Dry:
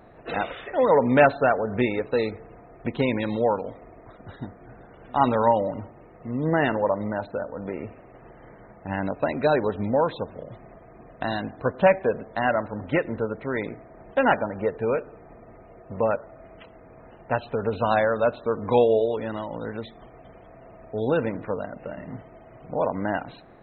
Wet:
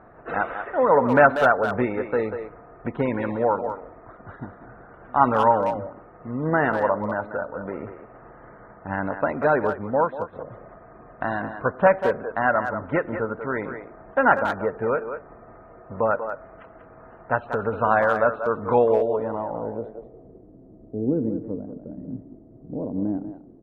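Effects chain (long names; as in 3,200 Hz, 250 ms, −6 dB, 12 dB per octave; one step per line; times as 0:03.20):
low-pass filter sweep 1,400 Hz → 300 Hz, 0:18.94–0:20.51
far-end echo of a speakerphone 190 ms, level −8 dB
0:09.73–0:10.33: expander for the loud parts 1.5 to 1, over −33 dBFS
level −1 dB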